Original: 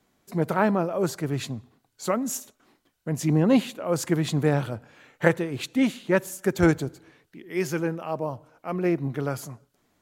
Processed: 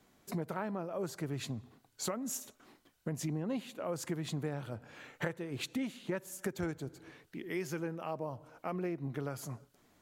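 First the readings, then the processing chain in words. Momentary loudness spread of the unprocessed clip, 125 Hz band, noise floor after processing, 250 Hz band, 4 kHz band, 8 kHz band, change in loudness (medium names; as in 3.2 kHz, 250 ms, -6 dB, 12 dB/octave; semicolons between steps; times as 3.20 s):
13 LU, -12.5 dB, -71 dBFS, -14.0 dB, -9.0 dB, -8.0 dB, -13.5 dB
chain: compression 6:1, threshold -36 dBFS, peak gain reduction 21 dB; trim +1 dB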